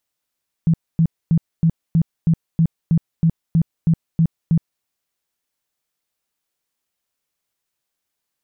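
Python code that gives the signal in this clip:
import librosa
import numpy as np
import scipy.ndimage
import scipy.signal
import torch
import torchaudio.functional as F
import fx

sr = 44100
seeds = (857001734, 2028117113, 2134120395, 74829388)

y = fx.tone_burst(sr, hz=164.0, cycles=11, every_s=0.32, bursts=13, level_db=-11.0)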